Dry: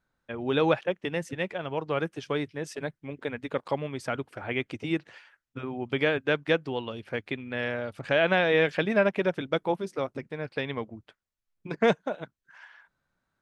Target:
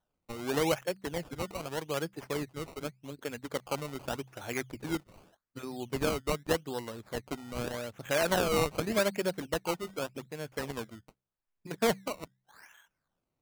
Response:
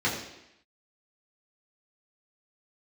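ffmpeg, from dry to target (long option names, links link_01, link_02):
-af "bandreject=frequency=64.4:width_type=h:width=4,bandreject=frequency=128.8:width_type=h:width=4,bandreject=frequency=193.2:width_type=h:width=4,acrusher=samples=18:mix=1:aa=0.000001:lfo=1:lforange=18:lforate=0.84,volume=-5dB"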